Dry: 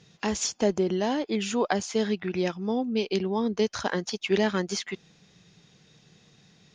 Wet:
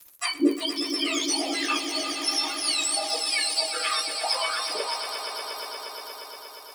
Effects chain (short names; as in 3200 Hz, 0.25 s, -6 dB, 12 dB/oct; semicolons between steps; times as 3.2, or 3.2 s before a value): spectrum mirrored in octaves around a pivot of 1400 Hz; treble ducked by the level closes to 1600 Hz, closed at -26 dBFS; spectral noise reduction 29 dB; crackle 58/s -51 dBFS; high shelf 7400 Hz +5 dB; in parallel at -2 dB: compressor, threshold -43 dBFS, peak gain reduction 21 dB; on the sum: transient shaper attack +1 dB, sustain +8 dB; high shelf 2200 Hz +12 dB; crossover distortion -52 dBFS; swelling echo 0.118 s, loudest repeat 5, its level -12 dB; on a send at -5 dB: reverb, pre-delay 3 ms